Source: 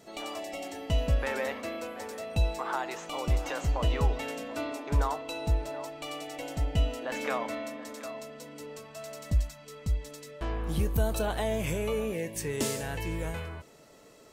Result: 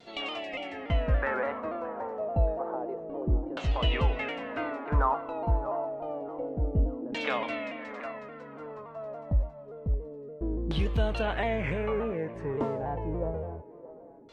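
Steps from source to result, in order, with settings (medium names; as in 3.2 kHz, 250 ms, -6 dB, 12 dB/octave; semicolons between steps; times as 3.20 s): LFO low-pass saw down 0.28 Hz 300–3700 Hz; feedback echo behind a band-pass 623 ms, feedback 31%, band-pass 700 Hz, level -14 dB; vibrato with a chosen wave saw down 3.5 Hz, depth 100 cents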